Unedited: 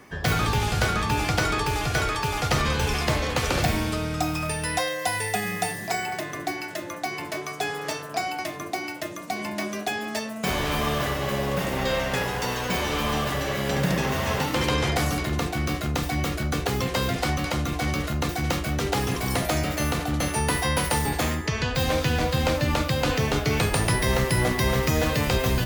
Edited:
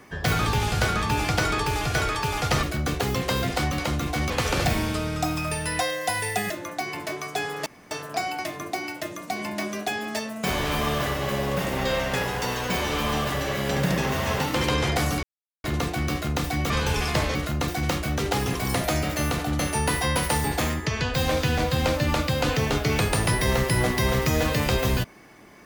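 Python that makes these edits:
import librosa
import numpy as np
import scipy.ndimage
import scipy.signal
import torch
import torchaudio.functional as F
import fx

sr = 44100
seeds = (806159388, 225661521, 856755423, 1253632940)

y = fx.edit(x, sr, fx.swap(start_s=2.63, length_s=0.65, other_s=16.29, other_length_s=1.67),
    fx.cut(start_s=5.48, length_s=1.27),
    fx.insert_room_tone(at_s=7.91, length_s=0.25),
    fx.insert_silence(at_s=15.23, length_s=0.41), tone=tone)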